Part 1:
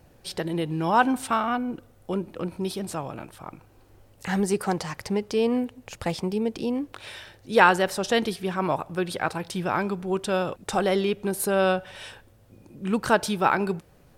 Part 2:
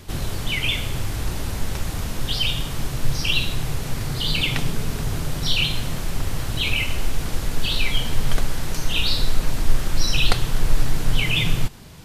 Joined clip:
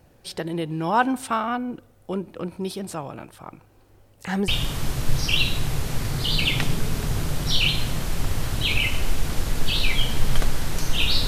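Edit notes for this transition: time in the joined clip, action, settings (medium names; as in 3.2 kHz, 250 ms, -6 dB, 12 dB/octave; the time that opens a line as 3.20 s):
part 1
4.48 s: go over to part 2 from 2.44 s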